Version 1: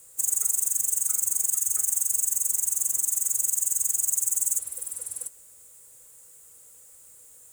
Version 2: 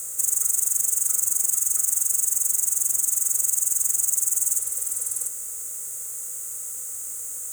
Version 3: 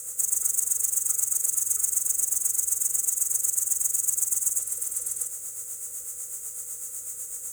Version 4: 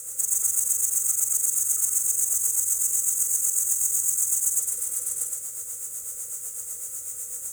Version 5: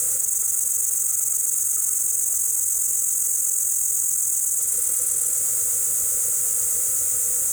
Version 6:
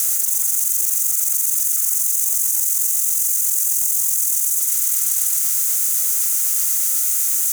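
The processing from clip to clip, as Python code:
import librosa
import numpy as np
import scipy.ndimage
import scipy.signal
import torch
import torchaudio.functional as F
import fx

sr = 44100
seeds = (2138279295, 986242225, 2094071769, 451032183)

y1 = fx.bin_compress(x, sr, power=0.4)
y1 = y1 * librosa.db_to_amplitude(-2.0)
y2 = fx.rotary(y1, sr, hz=8.0)
y3 = y2 + 10.0 ** (-3.0 / 20.0) * np.pad(y2, (int(115 * sr / 1000.0), 0))[:len(y2)]
y4 = fx.env_flatten(y3, sr, amount_pct=100)
y4 = y4 * librosa.db_to_amplitude(-1.5)
y5 = fx.spec_clip(y4, sr, under_db=20)
y5 = scipy.signal.sosfilt(scipy.signal.bessel(2, 2700.0, 'highpass', norm='mag', fs=sr, output='sos'), y5)
y5 = y5 * librosa.db_to_amplitude(4.0)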